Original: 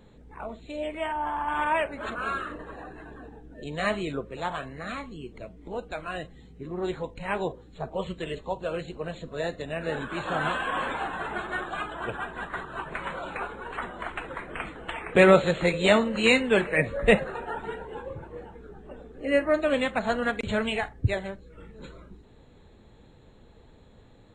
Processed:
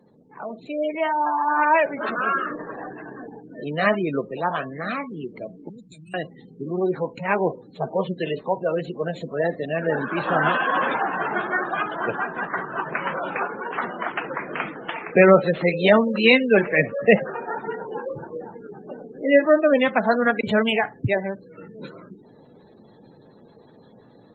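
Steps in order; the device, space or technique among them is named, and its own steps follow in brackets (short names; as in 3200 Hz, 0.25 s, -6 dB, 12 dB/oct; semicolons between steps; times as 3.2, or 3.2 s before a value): 5.69–6.14 Chebyshev band-stop 140–6100 Hz, order 2; noise-suppressed video call (HPF 140 Hz 24 dB/oct; spectral gate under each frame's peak -20 dB strong; AGC gain up to 8 dB; Opus 32 kbps 48000 Hz)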